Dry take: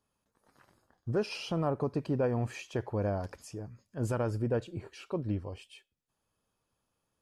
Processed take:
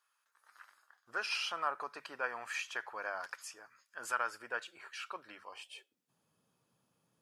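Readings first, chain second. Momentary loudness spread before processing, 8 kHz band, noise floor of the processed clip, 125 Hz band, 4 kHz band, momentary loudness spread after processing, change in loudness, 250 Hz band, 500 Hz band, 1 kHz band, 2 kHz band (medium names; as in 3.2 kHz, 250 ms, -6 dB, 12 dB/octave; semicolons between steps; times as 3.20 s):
13 LU, +3.0 dB, -81 dBFS, under -35 dB, +4.0 dB, 15 LU, -5.5 dB, -25.0 dB, -14.0 dB, +2.0 dB, +8.5 dB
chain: high-pass sweep 1.4 kHz -> 150 Hz, 5.47–6.12 s; hum notches 50/100/150/200 Hz; trim +2.5 dB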